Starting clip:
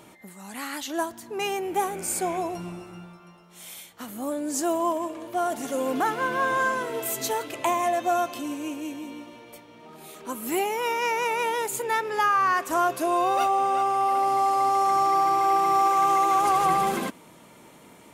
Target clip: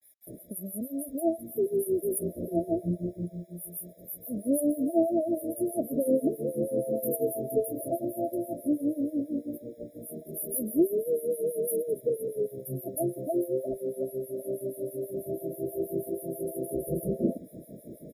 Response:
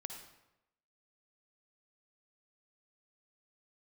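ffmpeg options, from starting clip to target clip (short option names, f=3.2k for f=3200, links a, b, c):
-filter_complex "[0:a]acrossover=split=1400[a][b];[a]adelay=270[c];[c][b]amix=inputs=2:normalize=0,adynamicequalizer=threshold=0.00708:dfrequency=390:dqfactor=3.5:tfrequency=390:tqfactor=3.5:attack=5:release=100:ratio=0.375:range=2:mode=cutabove:tftype=bell,asplit=2[d][e];[e]acompressor=threshold=-35dB:ratio=5,volume=-0.5dB[f];[d][f]amix=inputs=2:normalize=0,asettb=1/sr,asplit=3[g][h][i];[g]atrim=end=12.574[j];[h]atrim=start=12.57:end=13.14,asetpts=PTS-STARTPTS,afade=t=in:d=0.004:c=qsin,afade=t=out:st=0.566:d=0.004:c=qsin,equalizer=f=110:t=o:w=0.95:g=11.5[k];[i]atrim=start=13.136[l];[j][k]acrossfade=d=0.004:c1=hsin:c2=qsin[m];[m][l]acrossfade=d=0.004:c1=qsin:c2=hsin,acrossover=split=730[n][o];[n]aeval=exprs='val(0)*(1-1/2+1/2*cos(2*PI*6.2*n/s))':c=same[p];[o]aeval=exprs='val(0)*(1-1/2-1/2*cos(2*PI*6.2*n/s))':c=same[q];[p][q]amix=inputs=2:normalize=0,afftfilt=real='re*(1-between(b*sr/4096,680,9700))':imag='im*(1-between(b*sr/4096,680,9700))':win_size=4096:overlap=0.75,acrusher=bits=11:mix=0:aa=0.000001,afftfilt=real='re*eq(mod(floor(b*sr/1024/810),2),0)':imag='im*eq(mod(floor(b*sr/1024/810),2),0)':win_size=1024:overlap=0.75,volume=6dB"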